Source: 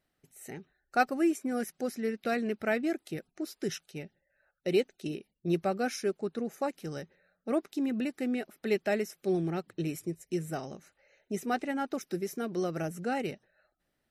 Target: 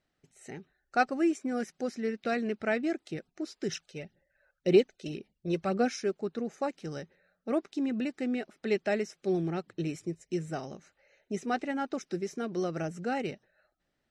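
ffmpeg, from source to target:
ffmpeg -i in.wav -filter_complex "[0:a]lowpass=frequency=7600:width=0.5412,lowpass=frequency=7600:width=1.3066,asplit=3[link_01][link_02][link_03];[link_01]afade=type=out:start_time=3.71:duration=0.02[link_04];[link_02]aphaser=in_gain=1:out_gain=1:delay=2:decay=0.5:speed=1.9:type=sinusoidal,afade=type=in:start_time=3.71:duration=0.02,afade=type=out:start_time=5.88:duration=0.02[link_05];[link_03]afade=type=in:start_time=5.88:duration=0.02[link_06];[link_04][link_05][link_06]amix=inputs=3:normalize=0" out.wav

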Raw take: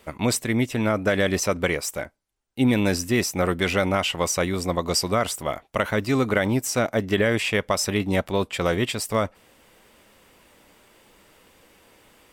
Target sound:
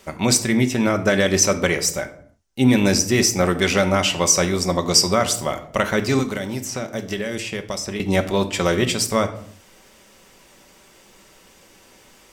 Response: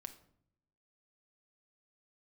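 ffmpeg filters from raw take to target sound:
-filter_complex "[0:a]asettb=1/sr,asplit=3[link_01][link_02][link_03];[link_01]atrim=end=6.194[link_04];[link_02]atrim=start=6.19:end=8,asetpts=PTS-STARTPTS,afade=type=in:duration=0.004:curve=qsin,afade=type=out:start_time=1.806:duration=0.004:curve=qsin,acrossover=split=650|3200[link_05][link_06][link_07];[link_05]acompressor=threshold=-31dB:ratio=4[link_08];[link_06]acompressor=threshold=-38dB:ratio=4[link_09];[link_07]acompressor=threshold=-41dB:ratio=4[link_10];[link_08][link_09][link_10]amix=inputs=3:normalize=0[link_11];[link_03]atrim=start=7.996[link_12];[link_04][link_11]acrossfade=duration=0.004:curve1=hsin:curve2=qsin[link_13];[link_13][link_12]acrossfade=duration=0.004:curve1=qsin:curve2=hsin,equalizer=frequency=6000:width=1.7:gain=9[link_14];[1:a]atrim=start_sample=2205,afade=type=out:start_time=0.39:duration=0.01,atrim=end_sample=17640[link_15];[link_14][link_15]afir=irnorm=-1:irlink=0,volume=8dB"

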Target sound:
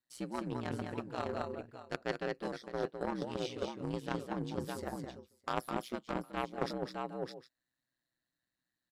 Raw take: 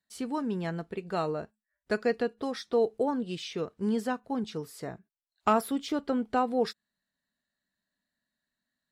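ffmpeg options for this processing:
ffmpeg -i in.wav -af "aeval=exprs='val(0)*sin(2*PI*62*n/s)':channel_layout=same,aecho=1:1:208|611|759:0.531|0.422|0.112,aeval=exprs='0.2*(cos(1*acos(clip(val(0)/0.2,-1,1)))-cos(1*PI/2))+0.0562*(cos(3*acos(clip(val(0)/0.2,-1,1)))-cos(3*PI/2))':channel_layout=same,areverse,acompressor=threshold=-47dB:ratio=6,areverse,volume=14dB" out.wav

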